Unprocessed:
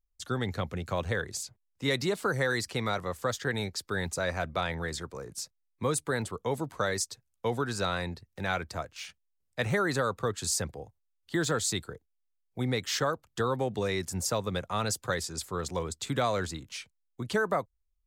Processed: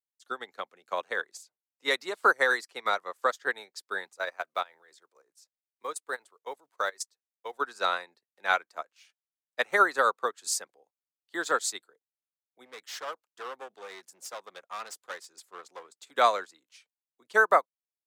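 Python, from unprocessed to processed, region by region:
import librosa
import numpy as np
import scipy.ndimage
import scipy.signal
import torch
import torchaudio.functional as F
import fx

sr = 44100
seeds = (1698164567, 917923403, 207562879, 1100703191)

y = fx.chain(x, sr, fx.block_float(bits=7),
    fx.peak_eq(hz=220.0, db=-6.0, octaves=0.69),
    fx.level_steps(step_db=10), at=(4.13, 7.61))
y = fx.chain(y, sr, fx.clip_hard(threshold_db=-30.0),
    fx.doppler_dist(depth_ms=0.12), at=(12.65, 16.11))
y = fx.dynamic_eq(y, sr, hz=1200.0, q=1.0, threshold_db=-43.0, ratio=4.0, max_db=5)
y = scipy.signal.sosfilt(scipy.signal.bessel(4, 490.0, 'highpass', norm='mag', fs=sr, output='sos'), y)
y = fx.upward_expand(y, sr, threshold_db=-40.0, expansion=2.5)
y = y * 10.0 ** (7.5 / 20.0)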